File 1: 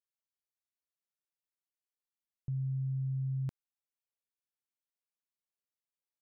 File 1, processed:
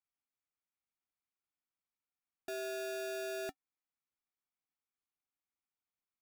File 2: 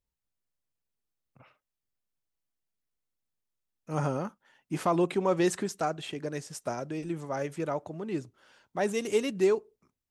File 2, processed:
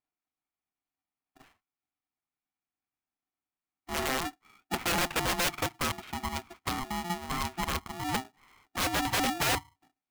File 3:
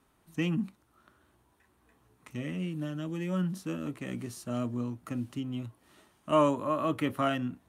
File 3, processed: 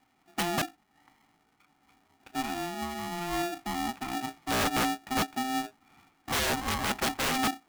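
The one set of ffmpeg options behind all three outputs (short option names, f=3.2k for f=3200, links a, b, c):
-af "highpass=180,equalizer=f=240:t=q:w=4:g=9,equalizer=f=1.1k:t=q:w=4:g=-8,equalizer=f=1.8k:t=q:w=4:g=7,lowpass=f=2.2k:w=0.5412,lowpass=f=2.2k:w=1.3066,aeval=exprs='(mod(13.3*val(0)+1,2)-1)/13.3':c=same,aeval=exprs='val(0)*sgn(sin(2*PI*520*n/s))':c=same"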